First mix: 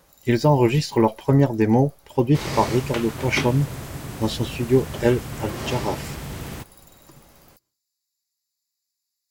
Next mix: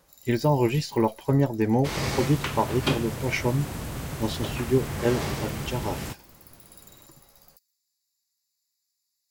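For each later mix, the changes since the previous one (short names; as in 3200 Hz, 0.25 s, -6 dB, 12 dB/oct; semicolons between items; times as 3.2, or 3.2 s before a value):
speech -5.0 dB; first sound: send +11.5 dB; second sound: entry -0.50 s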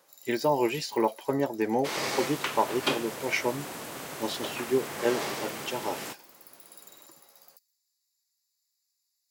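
master: add HPF 350 Hz 12 dB/oct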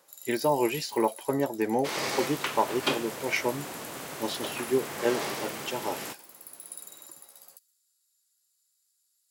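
first sound: remove fixed phaser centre 2100 Hz, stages 8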